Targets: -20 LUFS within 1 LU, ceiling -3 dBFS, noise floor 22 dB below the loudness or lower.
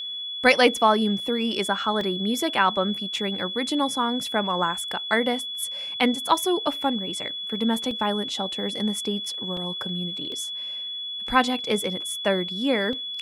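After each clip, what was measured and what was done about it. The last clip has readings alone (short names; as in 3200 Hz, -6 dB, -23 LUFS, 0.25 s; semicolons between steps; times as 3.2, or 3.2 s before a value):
dropouts 6; longest dropout 2.1 ms; steady tone 3400 Hz; tone level -30 dBFS; loudness -24.5 LUFS; peak -4.5 dBFS; loudness target -20.0 LUFS
-> interpolate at 2.01/3.16/7.91/9.57/10.32/12.93, 2.1 ms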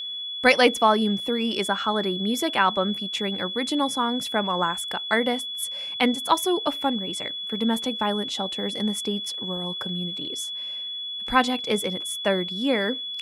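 dropouts 0; steady tone 3400 Hz; tone level -30 dBFS
-> notch 3400 Hz, Q 30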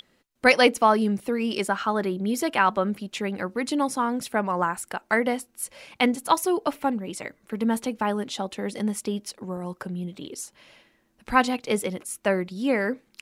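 steady tone none; loudness -25.5 LUFS; peak -5.0 dBFS; loudness target -20.0 LUFS
-> gain +5.5 dB; limiter -3 dBFS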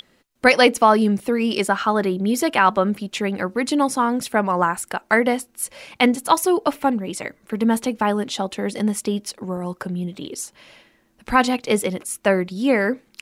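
loudness -20.5 LUFS; peak -3.0 dBFS; noise floor -61 dBFS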